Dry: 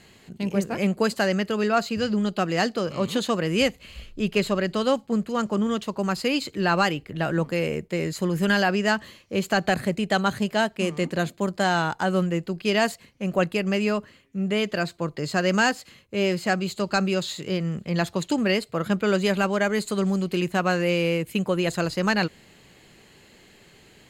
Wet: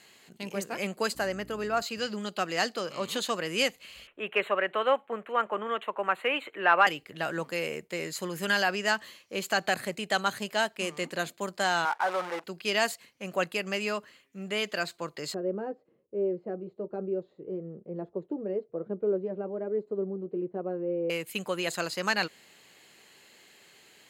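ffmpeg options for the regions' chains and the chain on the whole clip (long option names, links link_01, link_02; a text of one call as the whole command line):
ffmpeg -i in.wav -filter_complex "[0:a]asettb=1/sr,asplit=3[link_01][link_02][link_03];[link_01]atrim=end=1.154[link_04];[link_02]atrim=start=1.15:end=1.82,asetpts=PTS-STARTPTS,afade=type=in:duration=0.004:curve=qsin,afade=type=out:start_time=0.666:duration=0.004:curve=qsin,aeval=exprs='val(0)+0.0282*(sin(2*PI*60*n/s)+sin(2*PI*2*60*n/s)/2+sin(2*PI*3*60*n/s)/3+sin(2*PI*4*60*n/s)/4+sin(2*PI*5*60*n/s)/5)':channel_layout=same,equalizer=frequency=4000:width=0.51:gain=-8.5[link_05];[link_03]atrim=start=1.816[link_06];[link_04][link_05]acrossfade=duration=0.004:curve1=hsin:curve2=qsin[link_07];[link_07][link_06]acrossfade=duration=0.004:curve1=qsin:curve2=hsin,asettb=1/sr,asplit=3[link_08][link_09][link_10];[link_08]atrim=end=4.074[link_11];[link_09]atrim=start=4.07:end=6.87,asetpts=PTS-STARTPTS,afade=type=in:duration=0.004:curve=qsin,afade=type=out:start_time=2.796:duration=0.004:curve=qsin,asuperstop=centerf=5200:order=4:qfactor=0.73,acrossover=split=390 4800:gain=0.141 1 0.0794[link_12][link_13][link_14];[link_12][link_13][link_14]amix=inputs=3:normalize=0,acontrast=47[link_15];[link_10]atrim=start=6.866[link_16];[link_11][link_15]acrossfade=duration=0.004:curve1=hsin:curve2=qsin[link_17];[link_17][link_16]acrossfade=duration=0.004:curve1=qsin:curve2=hsin,asettb=1/sr,asplit=3[link_18][link_19][link_20];[link_18]atrim=end=11.854[link_21];[link_19]atrim=start=11.85:end=12.44,asetpts=PTS-STARTPTS,afade=type=in:duration=0.004:curve=qsin,afade=type=out:start_time=0.586:duration=0.004:curve=qsin,asplit=2[link_22][link_23];[link_23]highpass=frequency=720:poles=1,volume=20dB,asoftclip=type=tanh:threshold=-10dB[link_24];[link_22][link_24]amix=inputs=2:normalize=0,lowpass=frequency=1200:poles=1,volume=-6dB,acrusher=bits=5:dc=4:mix=0:aa=0.000001,bandpass=frequency=940:width_type=q:width=0.96[link_25];[link_20]atrim=start=12.436[link_26];[link_21][link_25]acrossfade=duration=0.004:curve1=hsin:curve2=qsin[link_27];[link_27][link_26]acrossfade=duration=0.004:curve1=qsin:curve2=hsin,asettb=1/sr,asplit=3[link_28][link_29][link_30];[link_28]atrim=end=15.344[link_31];[link_29]atrim=start=15.34:end=21.1,asetpts=PTS-STARTPTS,afade=type=in:duration=0.004:curve=qsin,afade=type=out:start_time=5.756:duration=0.004:curve=qsin,lowpass=frequency=430:width_type=q:width=2.9,flanger=delay=4.9:depth=1.6:regen=-54:speed=1.1:shape=sinusoidal[link_32];[link_30]atrim=start=21.096[link_33];[link_31][link_32]acrossfade=duration=0.004:curve1=hsin:curve2=qsin[link_34];[link_34][link_33]acrossfade=duration=0.004:curve1=qsin:curve2=hsin,highpass=frequency=710:poles=1,highshelf=frequency=9000:gain=4.5,volume=-2dB" out.wav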